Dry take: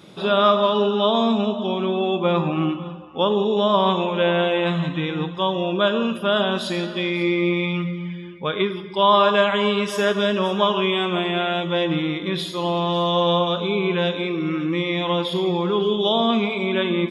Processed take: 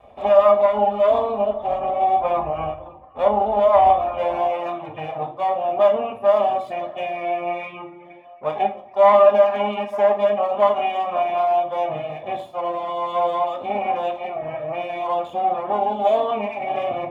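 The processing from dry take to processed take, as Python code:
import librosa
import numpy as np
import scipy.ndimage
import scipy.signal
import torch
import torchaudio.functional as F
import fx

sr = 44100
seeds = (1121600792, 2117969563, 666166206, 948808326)

y = fx.lower_of_two(x, sr, delay_ms=1.7)
y = fx.highpass(y, sr, hz=fx.steps((0.0, 53.0), (4.33, 120.0)), slope=24)
y = fx.dereverb_blind(y, sr, rt60_s=0.82)
y = fx.curve_eq(y, sr, hz=(110.0, 180.0, 260.0, 390.0, 760.0, 1500.0, 2500.0, 4300.0, 6200.0, 11000.0), db=(0, -26, 2, -12, 7, -14, -9, -28, -26, -23))
y = fx.room_shoebox(y, sr, seeds[0], volume_m3=310.0, walls='furnished', distance_m=1.3)
y = y * 10.0 ** (2.5 / 20.0)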